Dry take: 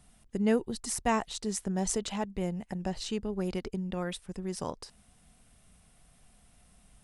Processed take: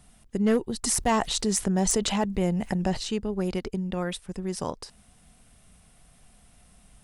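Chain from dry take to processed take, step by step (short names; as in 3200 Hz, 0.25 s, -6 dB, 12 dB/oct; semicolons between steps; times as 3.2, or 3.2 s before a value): hard clip -20.5 dBFS, distortion -18 dB; 0.83–2.97 fast leveller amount 50%; gain +4.5 dB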